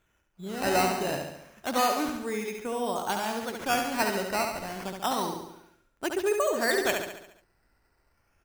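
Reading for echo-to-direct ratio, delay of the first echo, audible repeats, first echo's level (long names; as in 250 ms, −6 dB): −3.5 dB, 70 ms, 6, −5.0 dB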